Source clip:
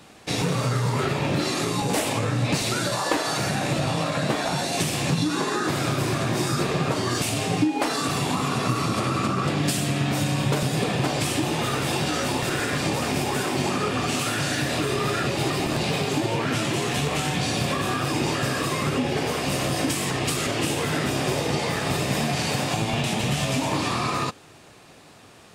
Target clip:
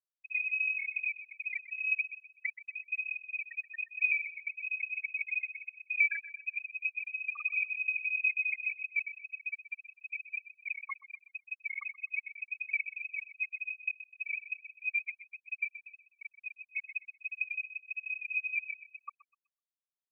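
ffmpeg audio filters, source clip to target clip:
-filter_complex "[0:a]afftfilt=real='re*gte(hypot(re,im),0.501)':imag='im*gte(hypot(re,im),0.501)':win_size=1024:overlap=0.75,highpass=f=100:w=0.5412,highpass=f=100:w=1.3066,tremolo=f=33:d=0.4,asetrate=56007,aresample=44100,asplit=2[a][b];[b]adelay=126,lowpass=f=880:p=1,volume=-13dB,asplit=2[c][d];[d]adelay=126,lowpass=f=880:p=1,volume=0.38,asplit=2[e][f];[f]adelay=126,lowpass=f=880:p=1,volume=0.38,asplit=2[g][h];[h]adelay=126,lowpass=f=880:p=1,volume=0.38[i];[c][e][g][i]amix=inputs=4:normalize=0[j];[a][j]amix=inputs=2:normalize=0,lowpass=f=2.3k:t=q:w=0.5098,lowpass=f=2.3k:t=q:w=0.6013,lowpass=f=2.3k:t=q:w=0.9,lowpass=f=2.3k:t=q:w=2.563,afreqshift=-2700,volume=-2dB"

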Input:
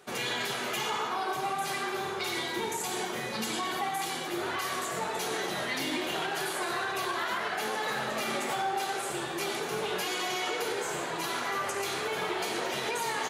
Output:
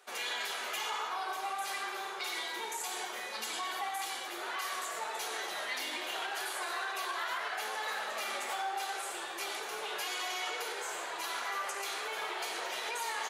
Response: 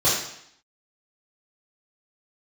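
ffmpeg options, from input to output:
-af "highpass=630,volume=-3.5dB"

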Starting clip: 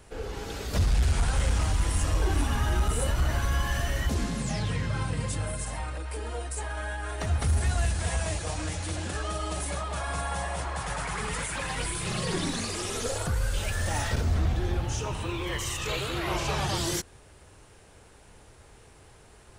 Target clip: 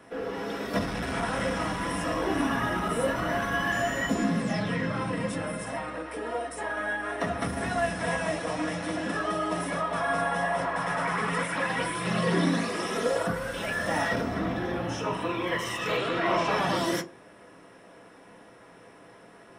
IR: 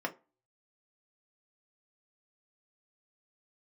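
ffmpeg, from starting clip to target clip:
-filter_complex "[0:a]asettb=1/sr,asplit=3[a][b][c];[a]atrim=end=3.724[d];[b]atrim=start=3.72:end=4.24,asetpts=PTS-STARTPTS,afade=t=in:d=0.004:c=qsin,afade=t=out:st=0.516:d=0.004:c=qsin,aeval=exprs='val(0)+0.0178*sin(2*PI*7000*n/s)':c=same[e];[c]atrim=start=4.236[f];[d][e]acrossfade=d=0.004:c1=hsin:c2=qsin[g];[g][f]acrossfade=d=0.004:c1=qsin:c2=hsin,asettb=1/sr,asplit=3[h][i][j];[h]atrim=end=15.974[k];[i]atrim=start=15.97:end=16.51,asetpts=PTS-STARTPTS,afade=t=in:d=0.004:c=qsin,afade=t=out:st=0.536:d=0.004:c=qsin,lowpass=f=9k:w=0.5412,lowpass=f=9k:w=1.3066[l];[j]atrim=start=16.506[m];[k][l]acrossfade=d=0.004:c1=hsin:c2=qsin[n];[n][m]acrossfade=d=0.004:c1=qsin:c2=hsin[o];[1:a]atrim=start_sample=2205[p];[o][p]afir=irnorm=-1:irlink=0"

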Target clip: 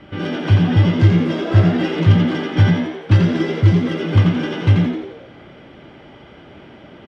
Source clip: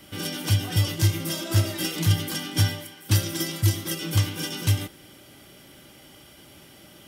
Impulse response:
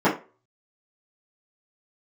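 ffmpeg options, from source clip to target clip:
-filter_complex "[0:a]lowpass=2.3k,aemphasis=mode=reproduction:type=50fm,asplit=7[a][b][c][d][e][f][g];[b]adelay=86,afreqshift=72,volume=-5dB[h];[c]adelay=172,afreqshift=144,volume=-11dB[i];[d]adelay=258,afreqshift=216,volume=-17dB[j];[e]adelay=344,afreqshift=288,volume=-23.1dB[k];[f]adelay=430,afreqshift=360,volume=-29.1dB[l];[g]adelay=516,afreqshift=432,volume=-35.1dB[m];[a][h][i][j][k][l][m]amix=inputs=7:normalize=0,volume=8.5dB"

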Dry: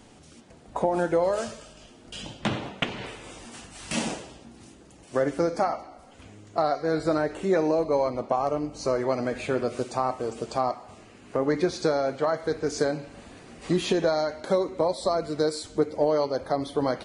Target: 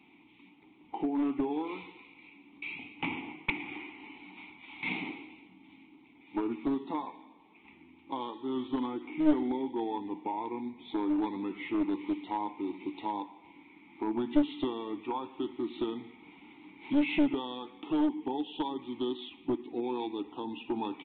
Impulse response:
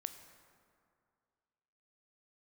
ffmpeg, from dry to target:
-filter_complex "[0:a]crystalizer=i=7.5:c=0,asetrate=35721,aresample=44100,asplit=3[a][b][c];[a]bandpass=f=300:t=q:w=8,volume=0dB[d];[b]bandpass=f=870:t=q:w=8,volume=-6dB[e];[c]bandpass=f=2.24k:t=q:w=8,volume=-9dB[f];[d][e][f]amix=inputs=3:normalize=0,aresample=8000,aeval=exprs='clip(val(0),-1,0.0376)':c=same,aresample=44100,volume=2.5dB"

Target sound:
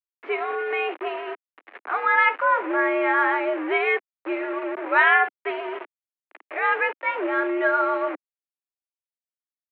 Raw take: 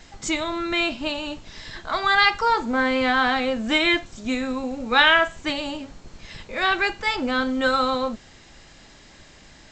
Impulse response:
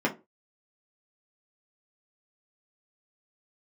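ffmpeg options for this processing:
-filter_complex "[0:a]asettb=1/sr,asplit=3[a][b][c];[a]atrim=end=3.854[d];[b]atrim=start=3.85:end=4.56,asetpts=PTS-STARTPTS,afade=t=in:d=0.004:c=qsin,afade=t=out:st=0.706:d=0.004:c=qsin,aeval=exprs='sgn(val(0))*max(abs(val(0))-0.01,0)':c=same[e];[c]atrim=start=4.556[f];[d][e]acrossfade=d=0.004:c1=hsin:c2=qsin[g];[g][f]acrossfade=d=0.004:c1=qsin:c2=hsin,acrusher=bits=4:mix=0:aa=0.000001,highpass=f=220:t=q:w=0.5412,highpass=f=220:t=q:w=1.307,lowpass=f=2.3k:t=q:w=0.5176,lowpass=f=2.3k:t=q:w=0.7071,lowpass=f=2.3k:t=q:w=1.932,afreqshift=92"

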